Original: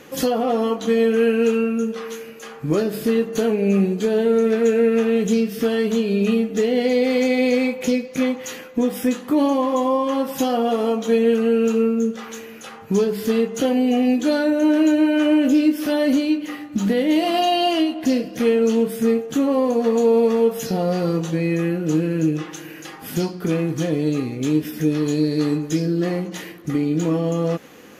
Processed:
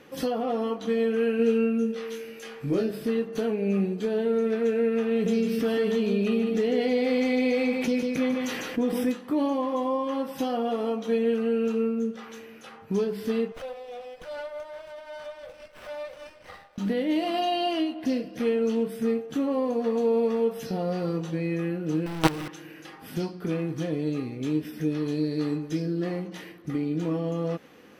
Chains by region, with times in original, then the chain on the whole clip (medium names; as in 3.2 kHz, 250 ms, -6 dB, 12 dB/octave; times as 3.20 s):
1.37–2.91 s: peaking EQ 1.1 kHz -7.5 dB 0.66 oct + doubling 22 ms -3.5 dB + tape noise reduction on one side only encoder only
5.11–9.12 s: delay 149 ms -7 dB + level flattener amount 50%
13.52–16.78 s: compression, threshold -21 dBFS + brick-wall FIR high-pass 460 Hz + sliding maximum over 9 samples
22.06–22.48 s: hum notches 50/100/150/200/250/300/350 Hz + companded quantiser 2-bit
whole clip: treble shelf 7.6 kHz -8 dB; band-stop 6.8 kHz, Q 6.5; trim -7.5 dB